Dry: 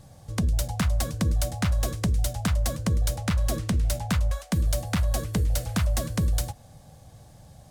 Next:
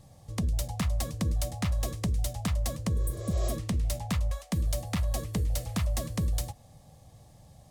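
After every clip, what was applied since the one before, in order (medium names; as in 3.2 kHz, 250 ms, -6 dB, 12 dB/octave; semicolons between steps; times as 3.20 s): spectral replace 2.98–3.48 s, 330–7900 Hz both; band-stop 1.5 kHz, Q 5.6; trim -4.5 dB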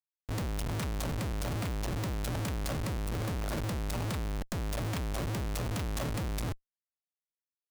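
Schmitt trigger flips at -39 dBFS; trim -3 dB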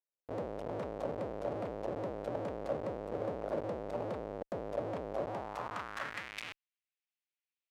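band-pass sweep 540 Hz -> 2.5 kHz, 5.14–6.41 s; trim +7 dB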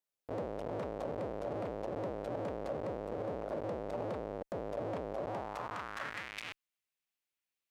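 peak limiter -31.5 dBFS, peak gain reduction 7 dB; trim +2.5 dB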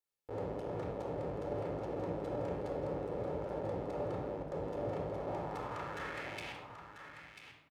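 on a send: delay 991 ms -9 dB; on the sum: simulated room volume 3300 m³, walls furnished, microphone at 4.2 m; trim -5 dB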